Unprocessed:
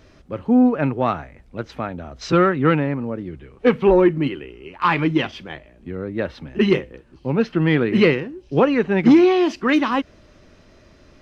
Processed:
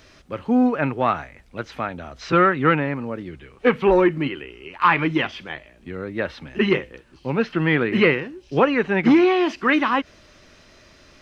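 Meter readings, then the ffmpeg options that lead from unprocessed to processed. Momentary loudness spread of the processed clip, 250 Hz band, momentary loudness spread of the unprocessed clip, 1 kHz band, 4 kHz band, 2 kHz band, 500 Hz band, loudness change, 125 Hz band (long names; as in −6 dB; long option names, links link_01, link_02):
18 LU, −3.0 dB, 19 LU, +1.5 dB, 0.0 dB, +3.0 dB, −2.0 dB, −1.5 dB, −3.5 dB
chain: -filter_complex "[0:a]acrossover=split=2700[link_01][link_02];[link_02]acompressor=threshold=-48dB:ratio=4:attack=1:release=60[link_03];[link_01][link_03]amix=inputs=2:normalize=0,tiltshelf=frequency=970:gain=-5.5,volume=1.5dB"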